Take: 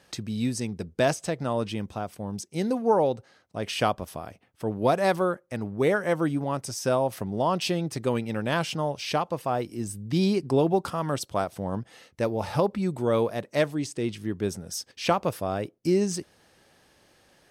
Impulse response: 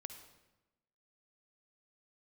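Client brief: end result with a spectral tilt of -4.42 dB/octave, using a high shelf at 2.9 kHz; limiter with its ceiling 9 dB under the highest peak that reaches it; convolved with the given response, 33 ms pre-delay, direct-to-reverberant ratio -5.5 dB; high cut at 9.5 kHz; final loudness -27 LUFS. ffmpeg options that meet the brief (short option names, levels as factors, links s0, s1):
-filter_complex "[0:a]lowpass=9500,highshelf=f=2900:g=7.5,alimiter=limit=0.15:level=0:latency=1,asplit=2[s0][s1];[1:a]atrim=start_sample=2205,adelay=33[s2];[s1][s2]afir=irnorm=-1:irlink=0,volume=2.99[s3];[s0][s3]amix=inputs=2:normalize=0,volume=0.596"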